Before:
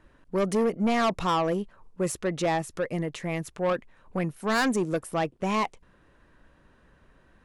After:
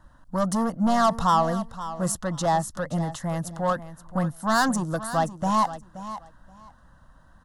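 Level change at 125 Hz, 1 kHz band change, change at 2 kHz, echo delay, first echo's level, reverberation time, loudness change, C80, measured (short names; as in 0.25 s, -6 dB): +4.5 dB, +6.0 dB, 0.0 dB, 0.526 s, -13.5 dB, none, +2.5 dB, none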